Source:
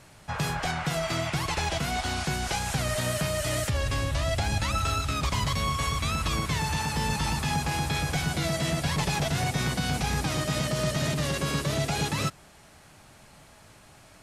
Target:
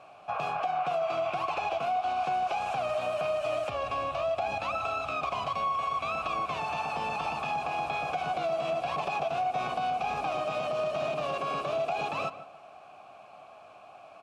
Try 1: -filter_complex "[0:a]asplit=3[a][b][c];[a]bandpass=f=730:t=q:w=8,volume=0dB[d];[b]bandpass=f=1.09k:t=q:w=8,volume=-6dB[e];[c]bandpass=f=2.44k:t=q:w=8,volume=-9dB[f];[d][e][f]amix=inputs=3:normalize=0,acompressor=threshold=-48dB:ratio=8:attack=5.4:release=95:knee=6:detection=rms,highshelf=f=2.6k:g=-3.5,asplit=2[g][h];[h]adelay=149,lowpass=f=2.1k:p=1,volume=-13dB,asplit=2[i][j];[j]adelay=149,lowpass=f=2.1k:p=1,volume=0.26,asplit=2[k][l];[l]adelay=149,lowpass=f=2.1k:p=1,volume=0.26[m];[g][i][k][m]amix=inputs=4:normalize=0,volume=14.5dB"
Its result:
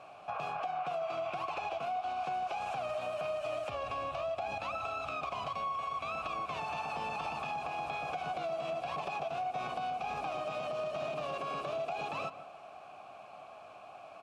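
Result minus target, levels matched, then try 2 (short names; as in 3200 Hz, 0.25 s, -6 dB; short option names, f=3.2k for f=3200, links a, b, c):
compressor: peak gain reduction +6.5 dB
-filter_complex "[0:a]asplit=3[a][b][c];[a]bandpass=f=730:t=q:w=8,volume=0dB[d];[b]bandpass=f=1.09k:t=q:w=8,volume=-6dB[e];[c]bandpass=f=2.44k:t=q:w=8,volume=-9dB[f];[d][e][f]amix=inputs=3:normalize=0,acompressor=threshold=-40.5dB:ratio=8:attack=5.4:release=95:knee=6:detection=rms,highshelf=f=2.6k:g=-3.5,asplit=2[g][h];[h]adelay=149,lowpass=f=2.1k:p=1,volume=-13dB,asplit=2[i][j];[j]adelay=149,lowpass=f=2.1k:p=1,volume=0.26,asplit=2[k][l];[l]adelay=149,lowpass=f=2.1k:p=1,volume=0.26[m];[g][i][k][m]amix=inputs=4:normalize=0,volume=14.5dB"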